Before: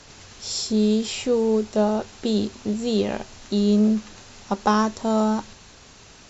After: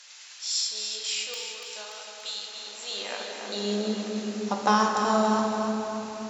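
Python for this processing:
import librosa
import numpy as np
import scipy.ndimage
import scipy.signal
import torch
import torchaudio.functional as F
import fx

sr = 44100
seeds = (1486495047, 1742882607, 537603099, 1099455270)

y = fx.peak_eq(x, sr, hz=490.0, db=fx.steps((0.0, 5.0), (1.34, -3.0)), octaves=2.2)
y = fx.room_shoebox(y, sr, seeds[0], volume_m3=220.0, walls='hard', distance_m=0.42)
y = fx.filter_sweep_highpass(y, sr, from_hz=2100.0, to_hz=69.0, start_s=2.38, end_s=4.97, q=0.7)
y = fx.low_shelf(y, sr, hz=250.0, db=-11.5)
y = fx.echo_feedback(y, sr, ms=288, feedback_pct=49, wet_db=-7.5)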